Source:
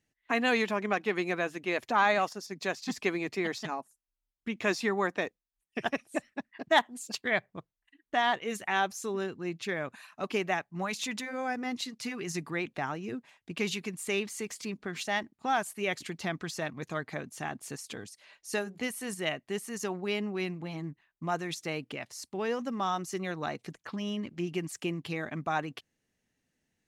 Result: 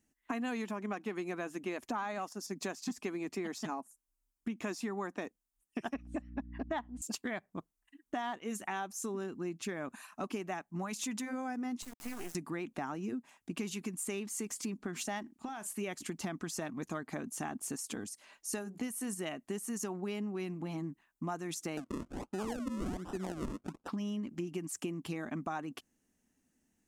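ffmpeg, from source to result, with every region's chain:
-filter_complex "[0:a]asettb=1/sr,asplit=3[s0][s1][s2];[s0]atrim=end=5.944[s3];[s1]atrim=start=5.94:end=7.02,asetpts=PTS-STARTPTS,afade=t=in:d=0.004:c=qsin,afade=t=out:st=1.076:d=0.004:c=qsin,aeval=exprs='val(0)+0.00501*(sin(2*PI*60*n/s)+sin(2*PI*2*60*n/s)/2+sin(2*PI*3*60*n/s)/3+sin(2*PI*4*60*n/s)/4+sin(2*PI*5*60*n/s)/5)':c=same,lowpass=3200[s4];[s2]atrim=start=7.016[s5];[s3][s4]acrossfade=d=0.004:c1=hsin:c2=qsin[s6];[s6][s5]acrossfade=d=0.004:c1=qsin:c2=hsin,asettb=1/sr,asplit=3[s7][s8][s9];[s7]atrim=end=11.824[s10];[s8]atrim=start=11.82:end=12.35,asetpts=PTS-STARTPTS,afade=t=in:d=0.004:c=qsin,afade=t=out:st=0.526:d=0.004:c=qsin,highpass=350,lowpass=2800,acrusher=bits=5:dc=4:mix=0:aa=0.000001[s11];[s9]atrim=start=12.346[s12];[s10][s11]acrossfade=d=0.004:c1=hsin:c2=qsin[s13];[s13][s12]acrossfade=d=0.004:c1=qsin:c2=hsin,asettb=1/sr,asplit=3[s14][s15][s16];[s14]atrim=end=15.224[s17];[s15]atrim=start=15.22:end=15.78,asetpts=PTS-STARTPTS,afade=t=in:d=0.004:c=qsin,afade=t=out:st=0.556:d=0.004:c=qsin,equalizer=f=3000:t=o:w=1.7:g=5.5,acompressor=threshold=0.01:ratio=10:attack=3.2:release=140:knee=1:detection=peak,asplit=2[s18][s19];[s19]adelay=37,volume=0.2[s20];[s18][s20]amix=inputs=2:normalize=0,atrim=end_sample=24696[s21];[s16]atrim=start=15.776[s22];[s17][s21]acrossfade=d=0.004:c1=hsin:c2=qsin[s23];[s23][s22]acrossfade=d=0.004:c1=qsin:c2=hsin,asettb=1/sr,asplit=3[s24][s25][s26];[s24]atrim=end=21.774[s27];[s25]atrim=start=21.77:end=23.88,asetpts=PTS-STARTPTS,afade=t=in:d=0.004:c=qsin,afade=t=out:st=2.106:d=0.004:c=qsin,acrusher=samples=39:mix=1:aa=0.000001:lfo=1:lforange=39:lforate=1.3,adynamicsmooth=sensitivity=1.5:basefreq=6500[s28];[s26]atrim=start=23.876[s29];[s27][s28]acrossfade=d=0.004:c1=hsin:c2=qsin[s30];[s30][s29]acrossfade=d=0.004:c1=qsin:c2=hsin,equalizer=f=125:t=o:w=1:g=-10,equalizer=f=250:t=o:w=1:g=6,equalizer=f=500:t=o:w=1:g=-7,equalizer=f=2000:t=o:w=1:g=-7,equalizer=f=4000:t=o:w=1:g=-9,equalizer=f=8000:t=o:w=1:g=3,acompressor=threshold=0.01:ratio=6,volume=1.78"

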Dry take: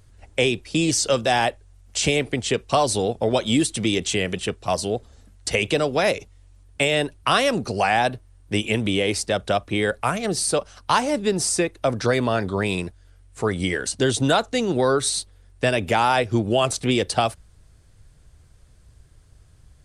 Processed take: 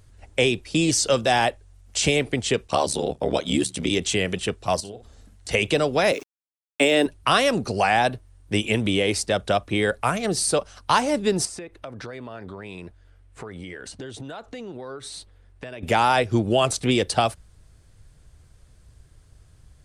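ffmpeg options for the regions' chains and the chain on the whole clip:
-filter_complex "[0:a]asettb=1/sr,asplit=3[s0][s1][s2];[s0]atrim=end=2.674[s3];[s1]atrim=start=2.67:end=3.91,asetpts=PTS-STARTPTS,afade=t=in:d=0.004:c=qsin,afade=t=out:st=1.236:d=0.004:c=qsin,highpass=89,bandreject=f=50:t=h:w=6,bandreject=f=100:t=h:w=6,bandreject=f=150:t=h:w=6,aeval=exprs='val(0)*sin(2*PI*36*n/s)':c=same[s4];[s2]atrim=start=3.906[s5];[s3][s4]acrossfade=d=0.004:c1=hsin:c2=qsin[s6];[s6][s5]acrossfade=d=0.004:c1=qsin:c2=hsin,asettb=1/sr,asplit=3[s7][s8][s9];[s7]atrim=end=4.804[s10];[s8]atrim=start=4.8:end=5.49,asetpts=PTS-STARTPTS,afade=t=in:d=0.004:c=qsin,afade=t=out:st=0.686:d=0.004:c=qsin,acompressor=threshold=0.0178:ratio=6:attack=3.2:release=140:knee=1:detection=peak,asplit=2[s11][s12];[s12]adelay=50,volume=0.355[s13];[s11][s13]amix=inputs=2:normalize=0,atrim=end_sample=30429[s14];[s9]atrim=start=5.486[s15];[s10][s14]acrossfade=d=0.004:c1=hsin:c2=qsin[s16];[s16][s15]acrossfade=d=0.004:c1=qsin:c2=hsin,asettb=1/sr,asplit=3[s17][s18][s19];[s17]atrim=end=6.124[s20];[s18]atrim=start=6.12:end=7.06,asetpts=PTS-STARTPTS,afade=t=in:d=0.004:c=qsin,afade=t=out:st=0.936:d=0.004:c=qsin,highpass=f=280:t=q:w=2.2,aeval=exprs='val(0)*gte(abs(val(0)),0.00841)':c=same[s21];[s19]atrim=start=7.056[s22];[s20][s21]acrossfade=d=0.004:c1=hsin:c2=qsin[s23];[s23][s22]acrossfade=d=0.004:c1=qsin:c2=hsin,asettb=1/sr,asplit=3[s24][s25][s26];[s24]atrim=end=11.454[s27];[s25]atrim=start=11.45:end=15.83,asetpts=PTS-STARTPTS,afade=t=in:d=0.004:c=qsin,afade=t=out:st=4.376:d=0.004:c=qsin,bass=f=250:g=-2,treble=f=4000:g=-10,acompressor=threshold=0.0224:ratio=8:attack=3.2:release=140:knee=1:detection=peak[s28];[s26]atrim=start=15.826[s29];[s27][s28]acrossfade=d=0.004:c1=hsin:c2=qsin[s30];[s30][s29]acrossfade=d=0.004:c1=qsin:c2=hsin"

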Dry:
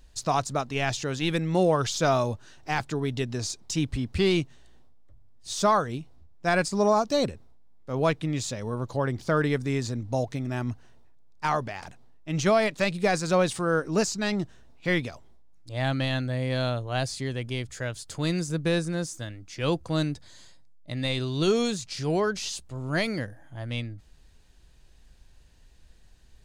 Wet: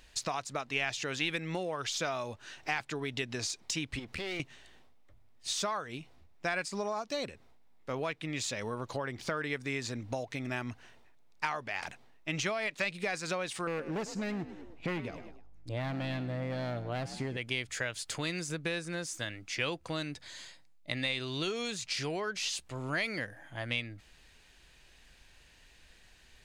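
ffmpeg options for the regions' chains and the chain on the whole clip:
-filter_complex "[0:a]asettb=1/sr,asplit=3[s0][s1][s2];[s0]atrim=end=3.994[s3];[s1]atrim=start=3.99:end=4.4,asetpts=PTS-STARTPTS,afade=t=in:d=0.004:c=qsin,afade=t=out:st=0.406:d=0.004:c=qsin,acompressor=threshold=0.0251:ratio=5:attack=3.2:release=140:knee=1:detection=peak,aeval=exprs='clip(val(0),-1,0.00631)':c=same[s4];[s2]atrim=start=4.396[s5];[s3][s4]acrossfade=d=0.004:c1=hsin:c2=qsin[s6];[s6][s5]acrossfade=d=0.004:c1=qsin:c2=hsin,asettb=1/sr,asplit=3[s7][s8][s9];[s7]atrim=end=13.674[s10];[s8]atrim=start=13.67:end=17.37,asetpts=PTS-STARTPTS,afade=t=in:d=0.004:c=qsin,afade=t=out:st=3.696:d=0.004:c=qsin,tiltshelf=f=930:g=8.5,volume=8.41,asoftclip=hard,volume=0.119,asplit=4[s11][s12][s13][s14];[s12]adelay=103,afreqshift=51,volume=0.158[s15];[s13]adelay=206,afreqshift=102,volume=0.0589[s16];[s14]adelay=309,afreqshift=153,volume=0.0216[s17];[s11][s15][s16][s17]amix=inputs=4:normalize=0,atrim=end_sample=163170[s18];[s9]atrim=start=17.366[s19];[s10][s18]acrossfade=d=0.004:c1=hsin:c2=qsin[s20];[s20][s19]acrossfade=d=0.004:c1=qsin:c2=hsin,lowshelf=f=210:g=-10.5,acompressor=threshold=0.0158:ratio=6,equalizer=f=2300:t=o:w=1.2:g=8.5,volume=1.26"

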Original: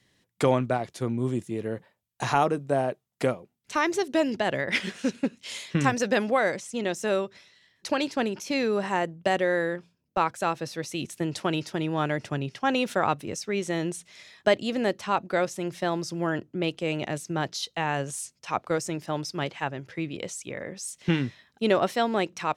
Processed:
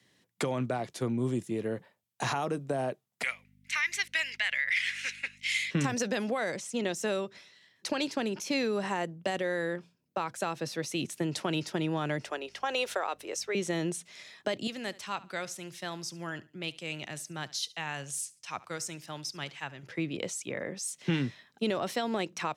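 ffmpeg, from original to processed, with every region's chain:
-filter_complex "[0:a]asettb=1/sr,asplit=3[s0][s1][s2];[s0]atrim=end=3.234[s3];[s1]atrim=start=3.23:end=5.71,asetpts=PTS-STARTPTS,afade=t=in:d=0.004:c=qsin,afade=t=out:st=2.476:d=0.004:c=qsin,highpass=f=2100:t=q:w=5.3,aeval=exprs='val(0)+0.00178*(sin(2*PI*50*n/s)+sin(2*PI*2*50*n/s)/2+sin(2*PI*3*50*n/s)/3+sin(2*PI*4*50*n/s)/4+sin(2*PI*5*50*n/s)/5)':c=same[s4];[s2]atrim=start=5.706[s5];[s3][s4]acrossfade=d=0.004:c1=hsin:c2=qsin[s6];[s6][s5]acrossfade=d=0.004:c1=qsin:c2=hsin,asettb=1/sr,asplit=3[s7][s8][s9];[s7]atrim=end=12.244[s10];[s8]atrim=start=12.24:end=13.55,asetpts=PTS-STARTPTS,afade=t=in:d=0.004:c=qsin,afade=t=out:st=1.306:d=0.004:c=qsin,highpass=f=400:w=0.5412,highpass=f=400:w=1.3066,aeval=exprs='val(0)+0.00112*(sin(2*PI*50*n/s)+sin(2*PI*2*50*n/s)/2+sin(2*PI*3*50*n/s)/3+sin(2*PI*4*50*n/s)/4+sin(2*PI*5*50*n/s)/5)':c=same[s11];[s9]atrim=start=13.546[s12];[s10][s11]acrossfade=d=0.004:c1=hsin:c2=qsin[s13];[s13][s12]acrossfade=d=0.004:c1=qsin:c2=hsin,asettb=1/sr,asplit=3[s14][s15][s16];[s14]atrim=end=14.674[s17];[s15]atrim=start=14.67:end=19.83,asetpts=PTS-STARTPTS,afade=t=in:d=0.004:c=qsin,afade=t=out:st=5.156:d=0.004:c=qsin,equalizer=f=420:w=0.32:g=-14.5,aecho=1:1:71|142:0.0944|0.0283,atrim=end_sample=227556[s18];[s16]atrim=start=19.826[s19];[s17][s18]acrossfade=d=0.004:c1=hsin:c2=qsin[s20];[s20][s19]acrossfade=d=0.004:c1=qsin:c2=hsin,alimiter=limit=0.15:level=0:latency=1:release=27,highpass=120,acrossover=split=160|3000[s21][s22][s23];[s22]acompressor=threshold=0.0398:ratio=6[s24];[s21][s24][s23]amix=inputs=3:normalize=0"

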